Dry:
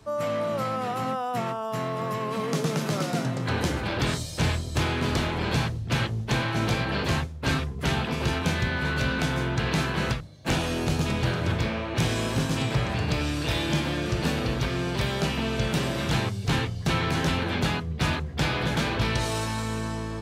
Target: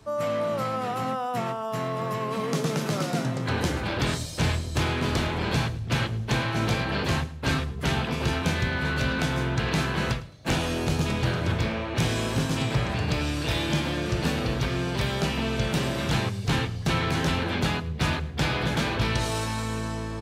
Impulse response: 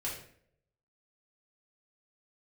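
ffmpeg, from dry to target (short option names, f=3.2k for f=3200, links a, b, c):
-af "aecho=1:1:107|214|321:0.119|0.0357|0.0107"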